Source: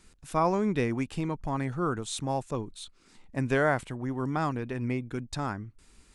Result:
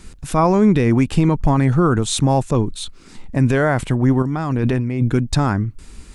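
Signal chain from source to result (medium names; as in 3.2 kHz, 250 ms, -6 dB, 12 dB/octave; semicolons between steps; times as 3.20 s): bass shelf 280 Hz +7.5 dB; 4.22–5.11 s: compressor with a negative ratio -33 dBFS, ratio -1; loudness maximiser +18.5 dB; trim -5 dB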